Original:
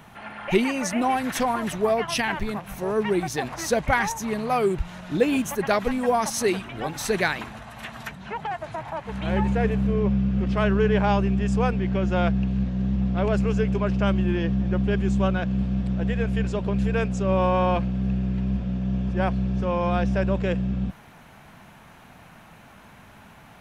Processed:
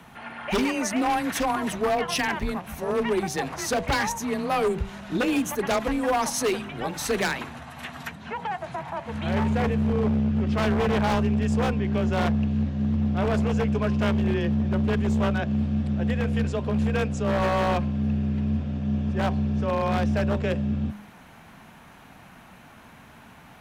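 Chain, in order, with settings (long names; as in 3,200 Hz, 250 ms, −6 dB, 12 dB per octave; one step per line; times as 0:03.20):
hum removal 93.03 Hz, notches 11
wave folding −17.5 dBFS
frequency shifter +20 Hz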